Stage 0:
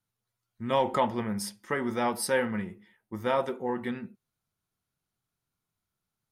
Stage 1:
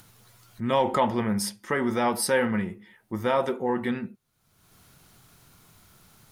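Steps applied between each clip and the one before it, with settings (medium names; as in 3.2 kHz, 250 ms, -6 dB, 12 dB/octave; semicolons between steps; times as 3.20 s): in parallel at 0 dB: peak limiter -24.5 dBFS, peak gain reduction 11 dB; on the sum: upward compressor, threshold -36 dBFS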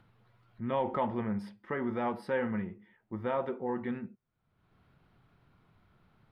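distance through air 450 m; trim -6.5 dB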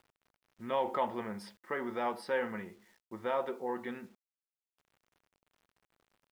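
level-controlled noise filter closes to 970 Hz, open at -30.5 dBFS; tone controls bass -14 dB, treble +12 dB; bit crusher 11-bit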